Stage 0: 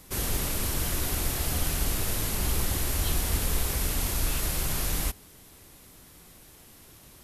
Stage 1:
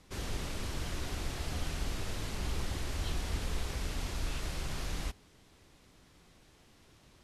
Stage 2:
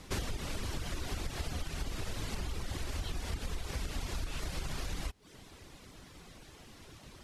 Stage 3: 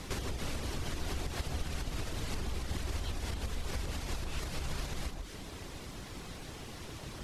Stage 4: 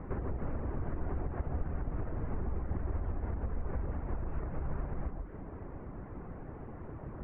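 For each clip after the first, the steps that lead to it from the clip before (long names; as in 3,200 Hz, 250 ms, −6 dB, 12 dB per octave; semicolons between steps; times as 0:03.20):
low-pass filter 5,600 Hz 12 dB per octave; level −7 dB
downward compressor 12 to 1, threshold −41 dBFS, peak gain reduction 13.5 dB; reverb reduction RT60 0.68 s; level +10 dB
downward compressor, threshold −41 dBFS, peak gain reduction 10.5 dB; on a send: delay that swaps between a low-pass and a high-pass 140 ms, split 1,100 Hz, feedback 54%, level −3.5 dB; on the sum: level +7 dB
Bessel low-pass filter 1,000 Hz, order 8; level +2 dB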